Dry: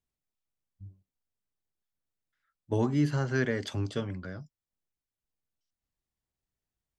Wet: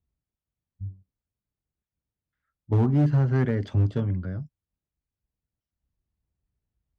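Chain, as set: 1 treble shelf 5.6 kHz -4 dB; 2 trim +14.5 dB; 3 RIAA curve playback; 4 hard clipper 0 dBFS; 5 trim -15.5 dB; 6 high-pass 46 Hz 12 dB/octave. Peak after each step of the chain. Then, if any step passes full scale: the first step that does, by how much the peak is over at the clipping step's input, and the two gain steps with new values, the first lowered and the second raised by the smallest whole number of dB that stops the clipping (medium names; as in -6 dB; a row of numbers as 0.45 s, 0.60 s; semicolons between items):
-16.0 dBFS, -1.5 dBFS, +5.5 dBFS, 0.0 dBFS, -15.5 dBFS, -12.5 dBFS; step 3, 5.5 dB; step 2 +8.5 dB, step 5 -9.5 dB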